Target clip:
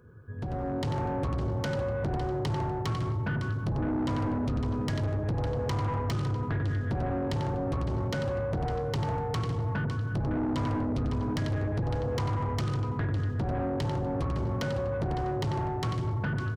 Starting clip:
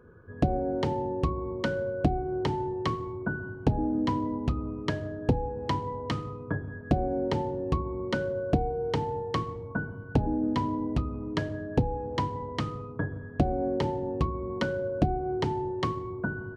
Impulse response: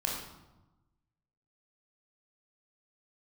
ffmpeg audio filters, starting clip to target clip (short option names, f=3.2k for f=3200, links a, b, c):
-filter_complex "[0:a]highshelf=f=2.4k:g=11.5,alimiter=limit=-17dB:level=0:latency=1:release=214,aecho=1:1:556:0.316,acompressor=threshold=-28dB:ratio=5,equalizer=f=110:t=o:w=1.4:g=12.5,asplit=2[a][b];[b]adelay=93.29,volume=-8dB,highshelf=f=4k:g=-2.1[c];[a][c]amix=inputs=2:normalize=0,asoftclip=type=hard:threshold=-25dB,dynaudnorm=f=180:g=7:m=9.5dB,asoftclip=type=tanh:threshold=-19dB,volume=-6.5dB"